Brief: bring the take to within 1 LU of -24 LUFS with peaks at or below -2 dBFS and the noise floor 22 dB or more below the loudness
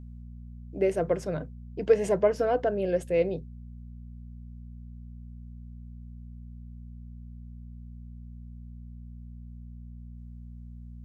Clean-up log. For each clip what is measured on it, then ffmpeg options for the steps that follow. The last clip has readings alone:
hum 60 Hz; highest harmonic 240 Hz; hum level -40 dBFS; loudness -27.5 LUFS; peak level -9.5 dBFS; loudness target -24.0 LUFS
-> -af "bandreject=f=60:t=h:w=4,bandreject=f=120:t=h:w=4,bandreject=f=180:t=h:w=4,bandreject=f=240:t=h:w=4"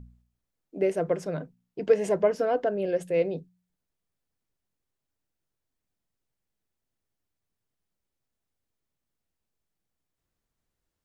hum not found; loudness -27.0 LUFS; peak level -9.5 dBFS; loudness target -24.0 LUFS
-> -af "volume=1.41"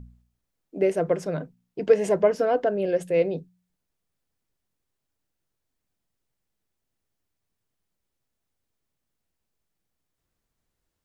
loudness -24.0 LUFS; peak level -6.5 dBFS; noise floor -81 dBFS

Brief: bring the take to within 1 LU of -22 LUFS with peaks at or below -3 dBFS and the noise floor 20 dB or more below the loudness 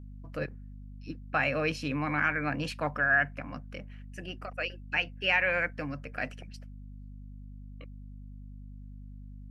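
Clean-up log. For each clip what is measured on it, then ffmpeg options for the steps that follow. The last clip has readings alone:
hum 50 Hz; highest harmonic 250 Hz; hum level -42 dBFS; loudness -30.5 LUFS; peak level -13.5 dBFS; loudness target -22.0 LUFS
-> -af "bandreject=f=50:t=h:w=6,bandreject=f=100:t=h:w=6,bandreject=f=150:t=h:w=6,bandreject=f=200:t=h:w=6,bandreject=f=250:t=h:w=6"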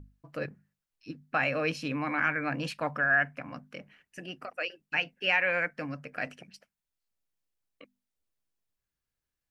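hum not found; loudness -30.0 LUFS; peak level -13.5 dBFS; loudness target -22.0 LUFS
-> -af "volume=2.51"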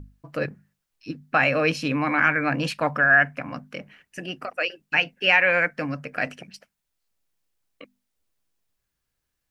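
loudness -22.0 LUFS; peak level -5.5 dBFS; noise floor -80 dBFS

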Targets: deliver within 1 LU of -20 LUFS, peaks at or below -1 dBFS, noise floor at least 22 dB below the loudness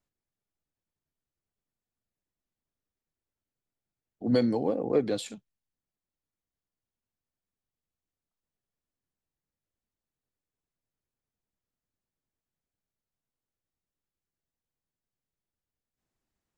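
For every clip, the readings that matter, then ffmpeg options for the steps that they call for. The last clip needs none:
loudness -28.0 LUFS; peak level -12.5 dBFS; loudness target -20.0 LUFS
-> -af "volume=2.51"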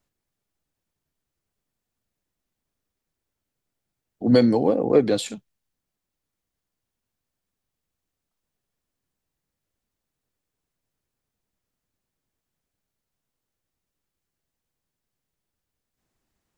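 loudness -20.0 LUFS; peak level -4.5 dBFS; noise floor -84 dBFS

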